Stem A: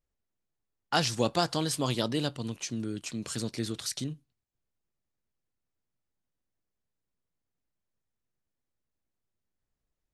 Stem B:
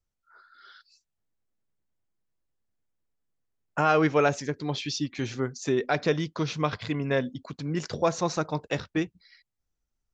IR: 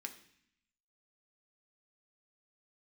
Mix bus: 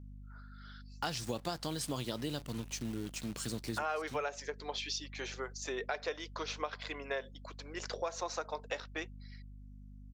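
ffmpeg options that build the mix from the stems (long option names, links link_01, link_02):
-filter_complex "[0:a]acrusher=bits=8:dc=4:mix=0:aa=0.000001,adelay=100,volume=-4dB[link_01];[1:a]highpass=frequency=460:width=0.5412,highpass=frequency=460:width=1.3066,aeval=exprs='val(0)+0.00501*(sin(2*PI*50*n/s)+sin(2*PI*2*50*n/s)/2+sin(2*PI*3*50*n/s)/3+sin(2*PI*4*50*n/s)/4+sin(2*PI*5*50*n/s)/5)':channel_layout=same,aphaser=in_gain=1:out_gain=1:delay=4.7:decay=0.22:speed=0.76:type=sinusoidal,volume=-4dB,asplit=2[link_02][link_03];[link_03]apad=whole_len=451286[link_04];[link_01][link_04]sidechaincompress=threshold=-35dB:ratio=4:attack=16:release=273[link_05];[link_05][link_02]amix=inputs=2:normalize=0,acompressor=threshold=-33dB:ratio=6"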